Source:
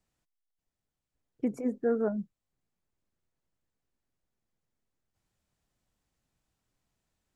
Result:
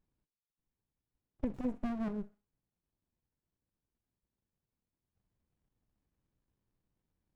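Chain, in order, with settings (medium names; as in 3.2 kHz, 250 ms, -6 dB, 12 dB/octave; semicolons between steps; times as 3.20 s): compression 10:1, threshold -30 dBFS, peak gain reduction 8 dB; on a send: thinning echo 64 ms, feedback 52%, high-pass 460 Hz, level -15 dB; on the sum: sliding maximum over 65 samples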